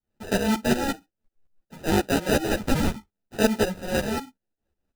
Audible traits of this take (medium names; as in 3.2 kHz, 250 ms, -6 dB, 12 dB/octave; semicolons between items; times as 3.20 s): tremolo saw up 5.5 Hz, depth 85%; aliases and images of a low sample rate 1.1 kHz, jitter 0%; a shimmering, thickened sound